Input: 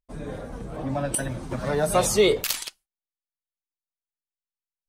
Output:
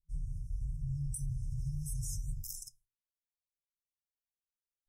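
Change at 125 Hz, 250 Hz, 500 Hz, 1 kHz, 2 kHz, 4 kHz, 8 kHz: -4.5 dB, under -15 dB, under -40 dB, under -40 dB, under -40 dB, -26.5 dB, -15.0 dB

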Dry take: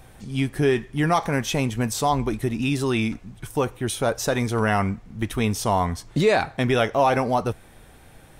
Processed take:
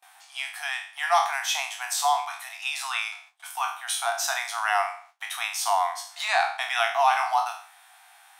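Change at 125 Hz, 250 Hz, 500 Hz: under -40 dB, under -40 dB, -10.0 dB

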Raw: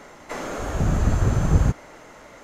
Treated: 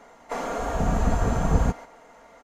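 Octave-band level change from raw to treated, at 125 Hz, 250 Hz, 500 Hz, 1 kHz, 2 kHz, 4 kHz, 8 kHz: -5.5, -1.5, +1.5, +3.5, -1.0, -2.5, -2.5 dB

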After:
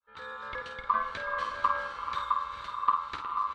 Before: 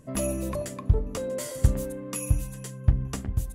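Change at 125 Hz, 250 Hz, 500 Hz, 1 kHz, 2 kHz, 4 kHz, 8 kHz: under -30 dB, -23.0 dB, -11.0 dB, +16.5 dB, +10.5 dB, +0.5 dB, under -25 dB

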